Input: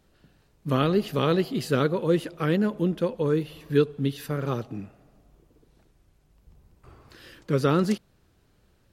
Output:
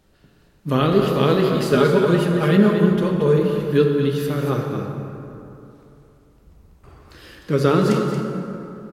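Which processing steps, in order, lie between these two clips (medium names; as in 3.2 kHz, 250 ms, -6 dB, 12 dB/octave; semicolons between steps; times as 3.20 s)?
1.72–3.38 s: comb 4.9 ms, depth 81%; on a send: delay 229 ms -8.5 dB; on the sum: plate-style reverb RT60 3 s, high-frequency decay 0.5×, DRR 2 dB; trim +3.5 dB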